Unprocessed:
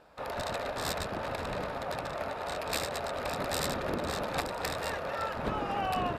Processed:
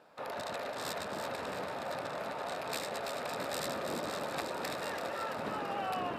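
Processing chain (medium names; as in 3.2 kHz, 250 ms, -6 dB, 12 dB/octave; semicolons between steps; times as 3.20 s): in parallel at +2 dB: peak limiter -30 dBFS, peak gain reduction 9.5 dB; on the sum: high-pass 160 Hz 12 dB/octave; two-band feedback delay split 1.6 kHz, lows 659 ms, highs 334 ms, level -6.5 dB; trim -9 dB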